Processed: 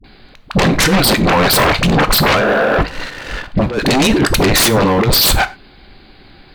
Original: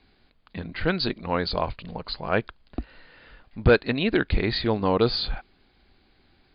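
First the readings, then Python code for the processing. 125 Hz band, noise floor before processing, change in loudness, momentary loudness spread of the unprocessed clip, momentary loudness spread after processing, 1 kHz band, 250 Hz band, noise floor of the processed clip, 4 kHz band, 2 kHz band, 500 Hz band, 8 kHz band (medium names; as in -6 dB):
+12.5 dB, -63 dBFS, +12.5 dB, 18 LU, 10 LU, +15.5 dB, +12.5 dB, -43 dBFS, +15.5 dB, +14.5 dB, +10.0 dB, no reading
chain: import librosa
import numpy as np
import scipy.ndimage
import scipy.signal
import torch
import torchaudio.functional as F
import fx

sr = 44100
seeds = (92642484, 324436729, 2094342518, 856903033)

y = fx.spec_repair(x, sr, seeds[0], start_s=2.4, length_s=0.34, low_hz=210.0, high_hz=1800.0, source='before')
y = fx.leveller(y, sr, passes=2)
y = fx.over_compress(y, sr, threshold_db=-22.0, ratio=-0.5)
y = fx.dispersion(y, sr, late='highs', ms=43.0, hz=420.0)
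y = fx.fold_sine(y, sr, drive_db=16, ceiling_db=-7.0)
y = fx.rev_gated(y, sr, seeds[1], gate_ms=130, shape='falling', drr_db=11.5)
y = F.gain(torch.from_numpy(y), -1.5).numpy()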